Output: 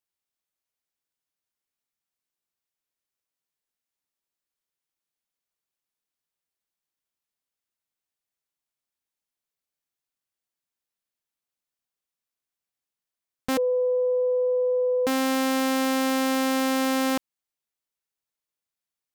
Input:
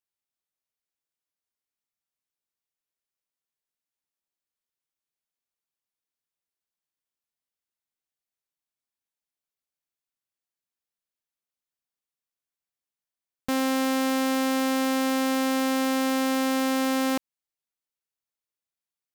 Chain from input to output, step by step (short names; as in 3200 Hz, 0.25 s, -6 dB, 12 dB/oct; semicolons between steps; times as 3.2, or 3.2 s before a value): 13.57–15.07 sine-wave speech; Doppler distortion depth 0.19 ms; gain +1.5 dB